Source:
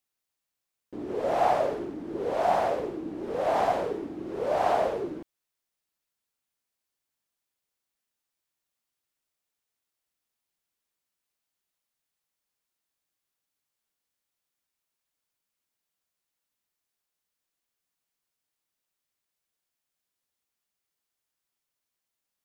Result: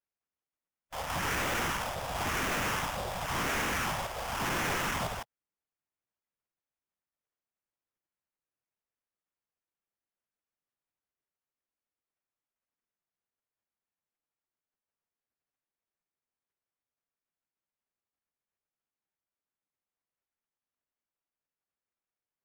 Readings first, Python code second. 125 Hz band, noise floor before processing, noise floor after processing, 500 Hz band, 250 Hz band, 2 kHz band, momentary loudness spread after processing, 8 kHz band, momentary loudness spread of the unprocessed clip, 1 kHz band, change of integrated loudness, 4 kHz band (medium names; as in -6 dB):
+6.0 dB, under -85 dBFS, under -85 dBFS, -12.0 dB, -5.0 dB, +8.0 dB, 6 LU, no reading, 11 LU, -6.0 dB, -4.0 dB, +9.5 dB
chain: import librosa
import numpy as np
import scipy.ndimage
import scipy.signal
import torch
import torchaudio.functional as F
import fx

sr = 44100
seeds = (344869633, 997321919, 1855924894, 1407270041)

y = fx.spec_gate(x, sr, threshold_db=-20, keep='weak')
y = fx.sample_hold(y, sr, seeds[0], rate_hz=4200.0, jitter_pct=20)
y = fx.fold_sine(y, sr, drive_db=14, ceiling_db=-27.0)
y = y * librosa.db_to_amplitude(-1.0)